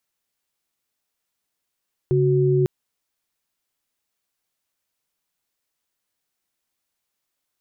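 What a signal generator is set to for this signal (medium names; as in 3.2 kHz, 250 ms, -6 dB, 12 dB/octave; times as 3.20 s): chord C#3/F#4 sine, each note -18 dBFS 0.55 s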